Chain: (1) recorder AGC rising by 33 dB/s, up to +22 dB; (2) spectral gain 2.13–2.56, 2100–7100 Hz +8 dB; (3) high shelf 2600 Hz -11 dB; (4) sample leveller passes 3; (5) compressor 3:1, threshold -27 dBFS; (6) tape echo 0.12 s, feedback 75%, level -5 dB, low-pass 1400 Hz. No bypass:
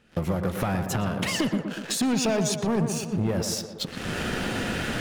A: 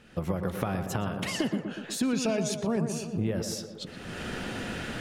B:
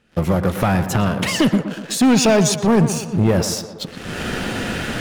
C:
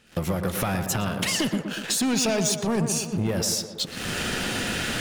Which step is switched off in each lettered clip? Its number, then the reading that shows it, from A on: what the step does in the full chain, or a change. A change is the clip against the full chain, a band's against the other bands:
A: 4, crest factor change +8.0 dB; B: 5, mean gain reduction 6.5 dB; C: 3, 8 kHz band +5.5 dB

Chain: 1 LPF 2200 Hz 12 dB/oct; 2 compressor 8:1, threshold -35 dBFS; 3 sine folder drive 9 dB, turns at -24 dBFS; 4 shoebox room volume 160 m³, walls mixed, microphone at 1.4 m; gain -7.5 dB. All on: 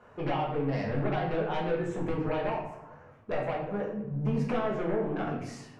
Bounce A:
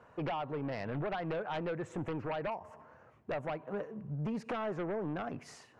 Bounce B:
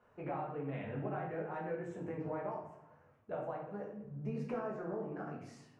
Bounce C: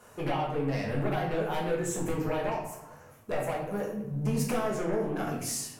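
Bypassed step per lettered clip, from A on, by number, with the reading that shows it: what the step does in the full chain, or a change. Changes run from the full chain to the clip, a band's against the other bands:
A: 4, echo-to-direct 3.5 dB to none; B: 3, loudness change -10.0 LU; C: 1, 4 kHz band +4.0 dB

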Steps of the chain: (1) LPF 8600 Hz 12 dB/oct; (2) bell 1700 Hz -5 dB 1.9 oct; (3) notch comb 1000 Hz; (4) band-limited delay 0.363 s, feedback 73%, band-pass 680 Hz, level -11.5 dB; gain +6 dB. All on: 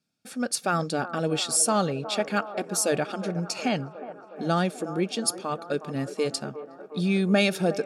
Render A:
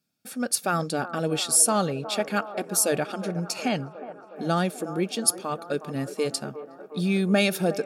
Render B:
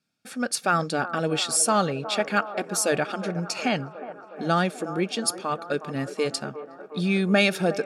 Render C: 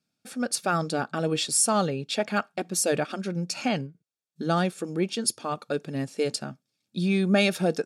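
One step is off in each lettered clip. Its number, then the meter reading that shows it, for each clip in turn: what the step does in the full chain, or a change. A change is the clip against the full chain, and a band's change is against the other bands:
1, 8 kHz band +4.0 dB; 2, 2 kHz band +4.0 dB; 4, momentary loudness spread change -1 LU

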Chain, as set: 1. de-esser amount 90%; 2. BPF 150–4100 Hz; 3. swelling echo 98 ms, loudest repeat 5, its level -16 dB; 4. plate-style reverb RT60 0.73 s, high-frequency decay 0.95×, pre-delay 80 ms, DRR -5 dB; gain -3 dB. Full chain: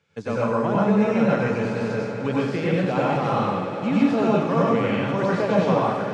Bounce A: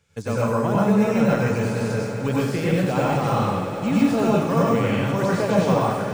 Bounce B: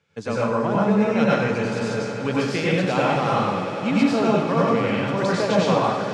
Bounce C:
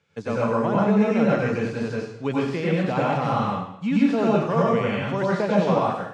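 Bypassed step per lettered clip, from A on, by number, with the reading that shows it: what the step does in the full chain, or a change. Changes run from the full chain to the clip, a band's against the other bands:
2, 125 Hz band +3.5 dB; 1, 4 kHz band +5.5 dB; 3, momentary loudness spread change +2 LU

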